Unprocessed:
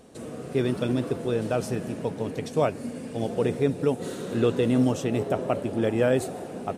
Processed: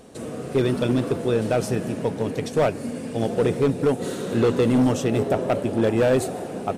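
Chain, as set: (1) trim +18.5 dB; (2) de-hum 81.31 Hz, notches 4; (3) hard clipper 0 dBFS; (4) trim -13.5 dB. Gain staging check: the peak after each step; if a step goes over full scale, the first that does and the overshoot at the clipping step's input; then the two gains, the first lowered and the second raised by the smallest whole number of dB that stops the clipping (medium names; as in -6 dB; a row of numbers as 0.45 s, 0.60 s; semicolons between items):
+8.0 dBFS, +8.0 dBFS, 0.0 dBFS, -13.5 dBFS; step 1, 8.0 dB; step 1 +10.5 dB, step 4 -5.5 dB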